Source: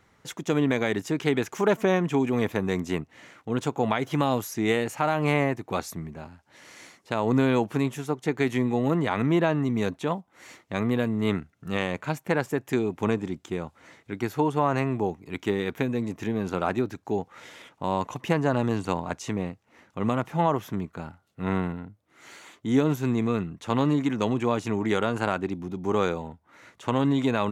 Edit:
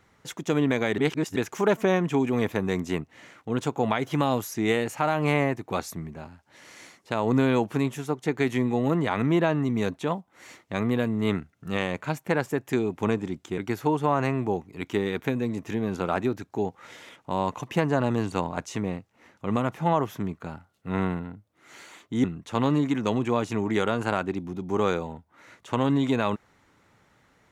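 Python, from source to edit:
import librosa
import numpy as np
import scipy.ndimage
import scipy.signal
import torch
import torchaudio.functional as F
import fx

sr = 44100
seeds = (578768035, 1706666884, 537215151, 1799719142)

y = fx.edit(x, sr, fx.reverse_span(start_s=0.98, length_s=0.38),
    fx.cut(start_s=13.58, length_s=0.53),
    fx.cut(start_s=22.77, length_s=0.62), tone=tone)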